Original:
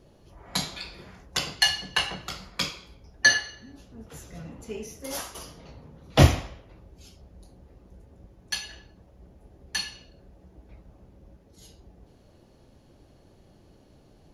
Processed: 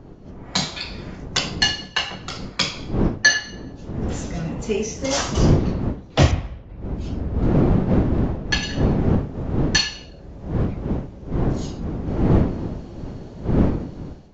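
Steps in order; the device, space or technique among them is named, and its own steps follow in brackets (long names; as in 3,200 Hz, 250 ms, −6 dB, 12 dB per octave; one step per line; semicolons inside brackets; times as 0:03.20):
0:06.31–0:08.63: bass and treble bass +9 dB, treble −12 dB
smartphone video outdoors (wind on the microphone 240 Hz −35 dBFS; automatic gain control gain up to 14.5 dB; level −1 dB; AAC 48 kbit/s 16,000 Hz)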